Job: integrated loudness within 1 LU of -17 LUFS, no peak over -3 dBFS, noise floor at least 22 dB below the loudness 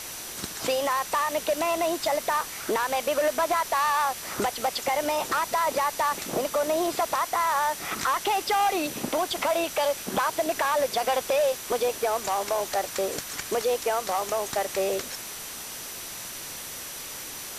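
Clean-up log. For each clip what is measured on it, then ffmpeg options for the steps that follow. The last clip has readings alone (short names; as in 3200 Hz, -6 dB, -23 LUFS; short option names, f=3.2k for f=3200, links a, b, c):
steady tone 5900 Hz; tone level -45 dBFS; noise floor -38 dBFS; noise floor target -49 dBFS; loudness -27.0 LUFS; peak -16.0 dBFS; loudness target -17.0 LUFS
-> -af "bandreject=f=5.9k:w=30"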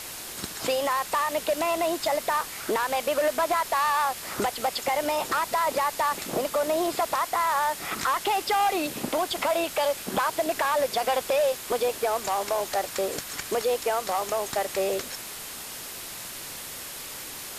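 steady tone none; noise floor -39 dBFS; noise floor target -49 dBFS
-> -af "afftdn=nr=10:nf=-39"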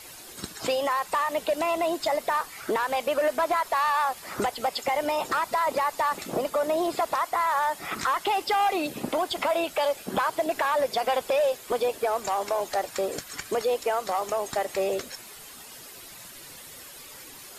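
noise floor -45 dBFS; noise floor target -49 dBFS
-> -af "afftdn=nr=6:nf=-45"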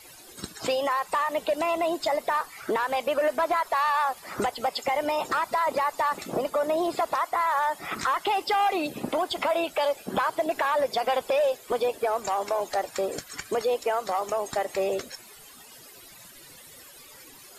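noise floor -49 dBFS; loudness -27.0 LUFS; peak -17.0 dBFS; loudness target -17.0 LUFS
-> -af "volume=10dB"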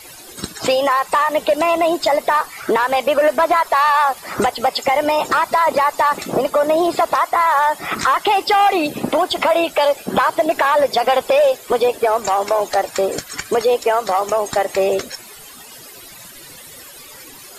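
loudness -17.0 LUFS; peak -7.0 dBFS; noise floor -39 dBFS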